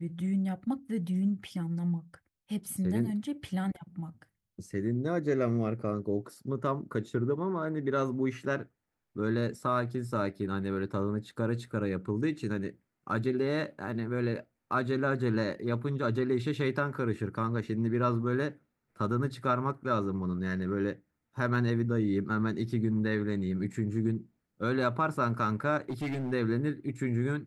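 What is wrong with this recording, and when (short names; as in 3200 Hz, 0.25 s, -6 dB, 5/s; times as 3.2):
25.9–26.33 clipped -30 dBFS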